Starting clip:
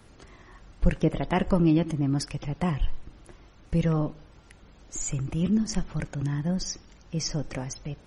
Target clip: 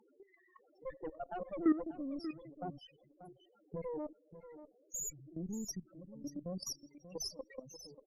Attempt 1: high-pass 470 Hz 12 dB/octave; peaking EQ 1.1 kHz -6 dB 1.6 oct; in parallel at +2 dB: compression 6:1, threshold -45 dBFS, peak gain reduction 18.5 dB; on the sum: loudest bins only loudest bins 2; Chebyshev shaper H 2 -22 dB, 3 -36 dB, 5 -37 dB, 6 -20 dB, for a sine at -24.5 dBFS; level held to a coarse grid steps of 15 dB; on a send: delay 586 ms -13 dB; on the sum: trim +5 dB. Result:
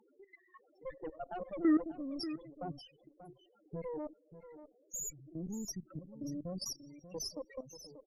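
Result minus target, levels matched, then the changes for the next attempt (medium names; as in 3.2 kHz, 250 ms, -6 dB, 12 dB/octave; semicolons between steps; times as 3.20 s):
compression: peak gain reduction -8 dB
change: compression 6:1, threshold -54.5 dBFS, peak gain reduction 26.5 dB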